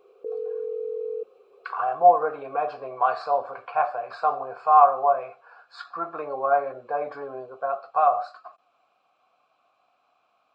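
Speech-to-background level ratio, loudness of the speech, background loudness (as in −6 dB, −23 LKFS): 8.5 dB, −24.0 LKFS, −32.5 LKFS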